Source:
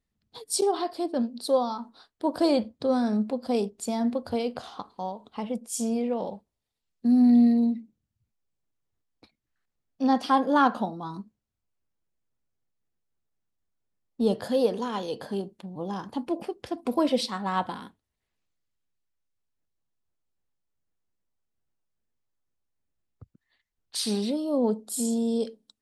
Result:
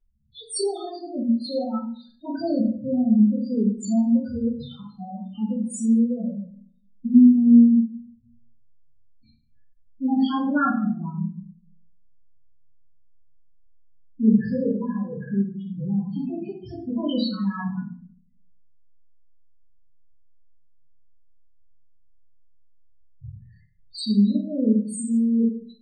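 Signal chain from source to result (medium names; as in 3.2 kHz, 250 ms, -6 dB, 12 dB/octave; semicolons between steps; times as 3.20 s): high-order bell 560 Hz -12.5 dB 2.4 oct; loudest bins only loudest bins 4; simulated room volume 50 m³, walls mixed, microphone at 1.9 m; trim +1.5 dB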